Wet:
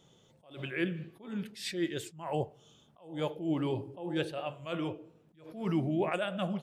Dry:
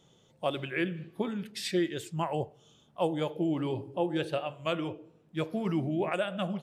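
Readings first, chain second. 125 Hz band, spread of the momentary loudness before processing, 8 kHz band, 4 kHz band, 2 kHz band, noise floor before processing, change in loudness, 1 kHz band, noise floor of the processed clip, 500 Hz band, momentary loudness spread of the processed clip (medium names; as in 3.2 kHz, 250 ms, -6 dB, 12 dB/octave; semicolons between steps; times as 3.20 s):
-1.5 dB, 6 LU, -2.5 dB, -3.0 dB, -2.5 dB, -64 dBFS, -2.5 dB, -4.5 dB, -65 dBFS, -4.0 dB, 11 LU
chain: attacks held to a fixed rise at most 120 dB/s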